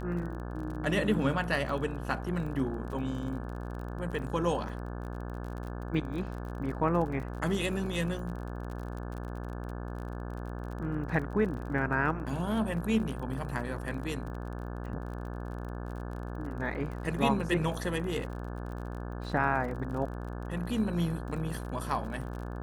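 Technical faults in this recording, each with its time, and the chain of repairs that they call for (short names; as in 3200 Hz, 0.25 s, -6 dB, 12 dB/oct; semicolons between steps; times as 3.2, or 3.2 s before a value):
buzz 60 Hz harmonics 29 -38 dBFS
crackle 36/s -39 dBFS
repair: de-click; de-hum 60 Hz, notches 29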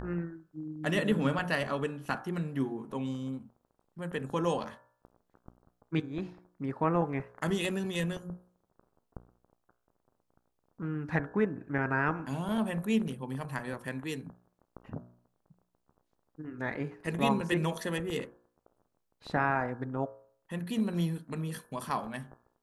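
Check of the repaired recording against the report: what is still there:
none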